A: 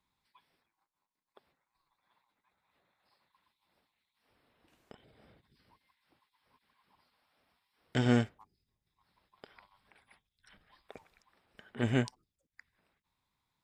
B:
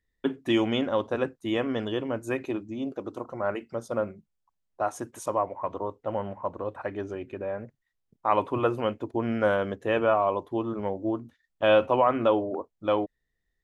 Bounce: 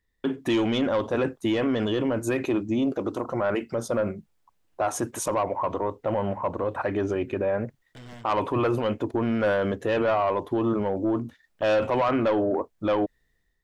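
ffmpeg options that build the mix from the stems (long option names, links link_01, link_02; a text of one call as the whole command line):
ffmpeg -i stem1.wav -i stem2.wav -filter_complex "[0:a]aeval=exprs='0.0596*(abs(mod(val(0)/0.0596+3,4)-2)-1)':channel_layout=same,volume=-12.5dB[link_01];[1:a]dynaudnorm=framelen=100:gausssize=7:maxgain=8dB,asoftclip=type=tanh:threshold=-12dB,volume=2.5dB[link_02];[link_01][link_02]amix=inputs=2:normalize=0,alimiter=limit=-17.5dB:level=0:latency=1:release=29" out.wav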